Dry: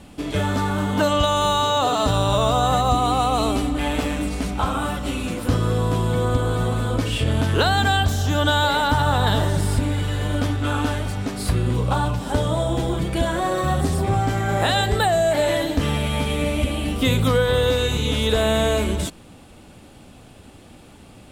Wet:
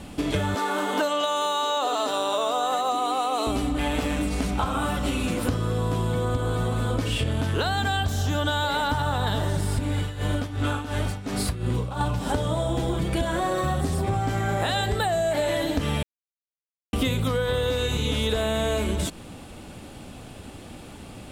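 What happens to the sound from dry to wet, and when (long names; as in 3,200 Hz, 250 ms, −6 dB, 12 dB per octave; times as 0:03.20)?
0:00.55–0:03.47: high-pass filter 300 Hz 24 dB per octave
0:09.97–0:12.01: amplitude tremolo 2.8 Hz, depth 84%
0:16.03–0:16.93: silence
whole clip: downward compressor, threshold −26 dBFS; level +4 dB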